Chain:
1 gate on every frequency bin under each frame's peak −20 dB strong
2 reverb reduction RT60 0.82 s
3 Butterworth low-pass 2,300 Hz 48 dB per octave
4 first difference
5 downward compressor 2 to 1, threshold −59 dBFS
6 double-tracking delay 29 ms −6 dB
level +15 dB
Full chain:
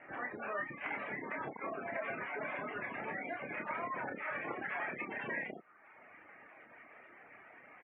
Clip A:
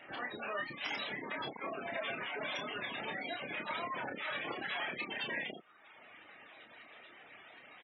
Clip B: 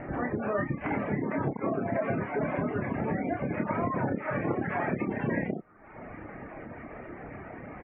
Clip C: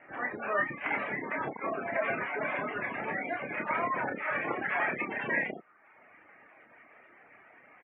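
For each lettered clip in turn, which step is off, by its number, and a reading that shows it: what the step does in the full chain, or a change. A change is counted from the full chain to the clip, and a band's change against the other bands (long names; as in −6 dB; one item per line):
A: 3, change in integrated loudness +1.0 LU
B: 4, 125 Hz band +13.0 dB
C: 5, average gain reduction 5.0 dB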